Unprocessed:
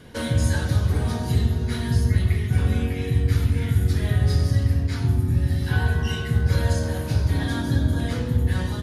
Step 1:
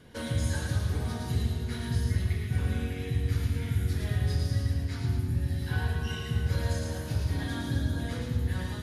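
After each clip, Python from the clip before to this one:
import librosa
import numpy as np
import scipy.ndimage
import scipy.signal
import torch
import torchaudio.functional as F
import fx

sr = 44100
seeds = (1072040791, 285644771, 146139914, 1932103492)

y = fx.echo_wet_highpass(x, sr, ms=111, feedback_pct=51, hz=1500.0, wet_db=-3.0)
y = y * librosa.db_to_amplitude(-8.0)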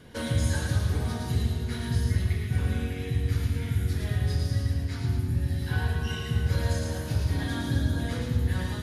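y = fx.rider(x, sr, range_db=10, speed_s=2.0)
y = y * librosa.db_to_amplitude(2.0)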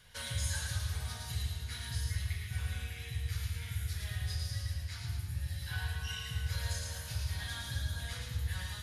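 y = fx.tone_stack(x, sr, knobs='10-0-10')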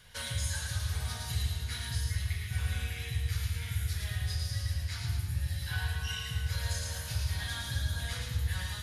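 y = fx.rider(x, sr, range_db=10, speed_s=0.5)
y = y * librosa.db_to_amplitude(3.5)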